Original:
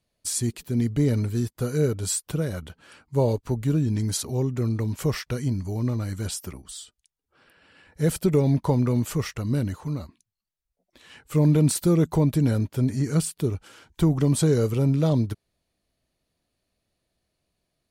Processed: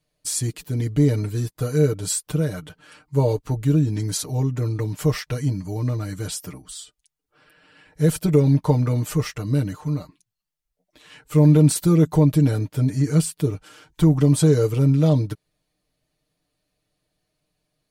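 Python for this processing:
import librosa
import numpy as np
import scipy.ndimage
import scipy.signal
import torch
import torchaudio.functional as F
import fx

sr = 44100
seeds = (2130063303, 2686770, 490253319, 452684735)

y = x + 0.8 * np.pad(x, (int(6.6 * sr / 1000.0), 0))[:len(x)]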